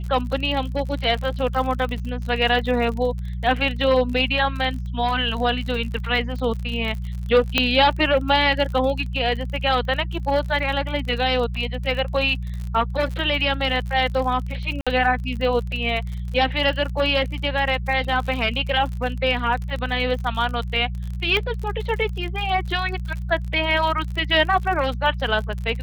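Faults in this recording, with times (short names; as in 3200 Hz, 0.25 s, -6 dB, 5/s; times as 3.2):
crackle 49/s -29 dBFS
hum 60 Hz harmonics 3 -28 dBFS
7.58 pop -3 dBFS
14.81–14.87 gap 56 ms
21.37 pop -11 dBFS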